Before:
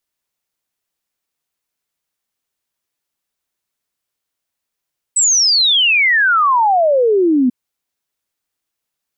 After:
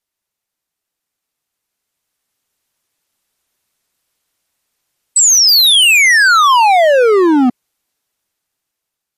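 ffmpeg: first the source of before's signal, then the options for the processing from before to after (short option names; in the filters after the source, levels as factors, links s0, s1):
-f lavfi -i "aevalsrc='0.335*clip(min(t,2.34-t)/0.01,0,1)*sin(2*PI*8100*2.34/log(240/8100)*(exp(log(240/8100)*t/2.34)-1))':d=2.34:s=44100"
-af "asoftclip=type=hard:threshold=0.133,dynaudnorm=f=860:g=5:m=3.35" -ar 48000 -c:a libmp3lame -b:a 56k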